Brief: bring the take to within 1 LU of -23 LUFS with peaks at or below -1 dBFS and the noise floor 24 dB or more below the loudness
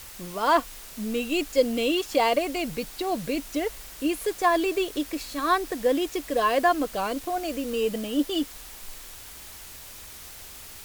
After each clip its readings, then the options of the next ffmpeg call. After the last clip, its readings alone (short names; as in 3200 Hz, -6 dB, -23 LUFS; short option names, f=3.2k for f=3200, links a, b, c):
noise floor -43 dBFS; noise floor target -50 dBFS; loudness -26.0 LUFS; peak -9.0 dBFS; loudness target -23.0 LUFS
-> -af "afftdn=nr=7:nf=-43"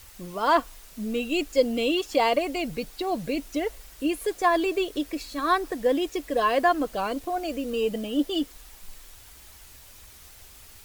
noise floor -49 dBFS; noise floor target -51 dBFS
-> -af "afftdn=nr=6:nf=-49"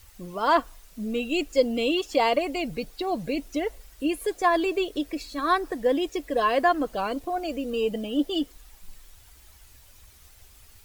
noise floor -53 dBFS; loudness -26.5 LUFS; peak -9.0 dBFS; loudness target -23.0 LUFS
-> -af "volume=3.5dB"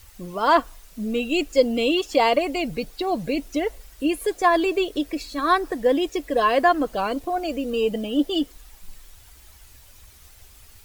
loudness -23.0 LUFS; peak -5.5 dBFS; noise floor -50 dBFS